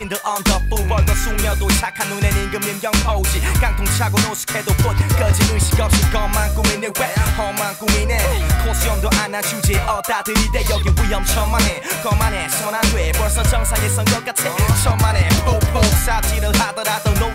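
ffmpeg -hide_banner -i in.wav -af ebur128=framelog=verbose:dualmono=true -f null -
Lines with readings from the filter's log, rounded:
Integrated loudness:
  I:         -14.2 LUFS
  Threshold: -24.2 LUFS
Loudness range:
  LRA:         1.7 LU
  Threshold: -34.1 LUFS
  LRA low:   -14.9 LUFS
  LRA high:  -13.1 LUFS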